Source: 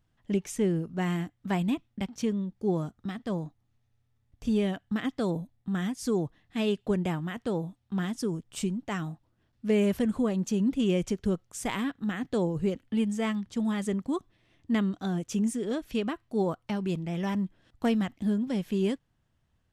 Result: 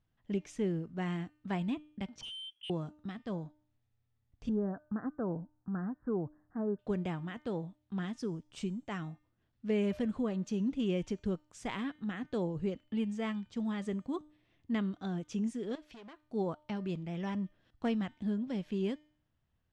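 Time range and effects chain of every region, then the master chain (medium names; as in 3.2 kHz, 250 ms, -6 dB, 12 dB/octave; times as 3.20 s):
2.21–2.70 s: frequency inversion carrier 3.3 kHz + tilt EQ -1.5 dB/octave + hard clipper -35.5 dBFS
4.49–6.79 s: steep low-pass 1.6 kHz 72 dB/octave + tape noise reduction on one side only encoder only
15.75–16.23 s: hard clipper -30.5 dBFS + bass shelf 320 Hz -11 dB + compression, threshold -41 dBFS
whole clip: low-pass 5.2 kHz 12 dB/octave; de-hum 302.2 Hz, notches 31; trim -6.5 dB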